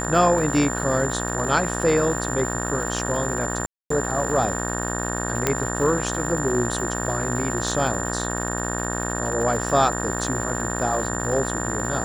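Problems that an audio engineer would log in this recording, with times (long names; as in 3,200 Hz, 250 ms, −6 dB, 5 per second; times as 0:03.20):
mains buzz 60 Hz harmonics 31 −28 dBFS
surface crackle 380 per second −32 dBFS
whistle 7,200 Hz −30 dBFS
0:03.66–0:03.90: drop-out 244 ms
0:05.47: click −4 dBFS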